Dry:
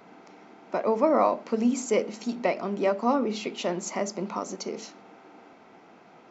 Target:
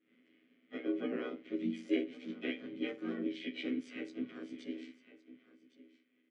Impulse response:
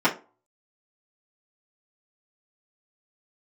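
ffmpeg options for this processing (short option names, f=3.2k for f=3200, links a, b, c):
-filter_complex "[0:a]agate=range=-33dB:threshold=-44dB:ratio=3:detection=peak,asplit=2[a][b];[b]highshelf=f=2.1k:g=8.5[c];[1:a]atrim=start_sample=2205,asetrate=48510,aresample=44100,highshelf=f=2.4k:g=10[d];[c][d]afir=irnorm=-1:irlink=0,volume=-29dB[e];[a][e]amix=inputs=2:normalize=0,afftfilt=real='hypot(re,im)*cos(PI*b)':imag='0':win_size=2048:overlap=0.75,bass=f=250:g=-6,treble=f=4k:g=-12,aecho=1:1:2:0.41,aecho=1:1:1112:0.133,asplit=4[f][g][h][i];[g]asetrate=35002,aresample=44100,atempo=1.25992,volume=-1dB[j];[h]asetrate=37084,aresample=44100,atempo=1.18921,volume=-13dB[k];[i]asetrate=58866,aresample=44100,atempo=0.749154,volume=-1dB[l];[f][j][k][l]amix=inputs=4:normalize=0,afreqshift=-23,asplit=3[m][n][o];[m]bandpass=f=270:t=q:w=8,volume=0dB[p];[n]bandpass=f=2.29k:t=q:w=8,volume=-6dB[q];[o]bandpass=f=3.01k:t=q:w=8,volume=-9dB[r];[p][q][r]amix=inputs=3:normalize=0,volume=2dB"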